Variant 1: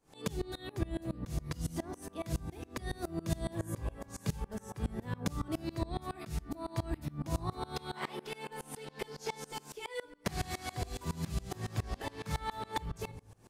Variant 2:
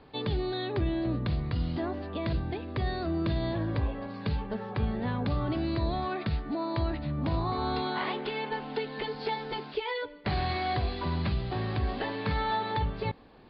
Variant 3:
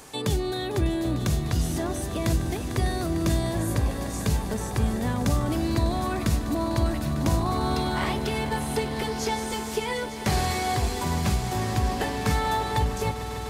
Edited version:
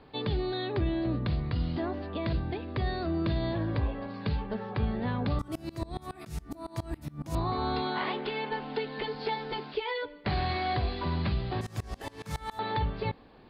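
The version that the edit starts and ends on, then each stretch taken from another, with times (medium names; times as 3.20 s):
2
5.39–7.35 s: from 1
11.61–12.59 s: from 1
not used: 3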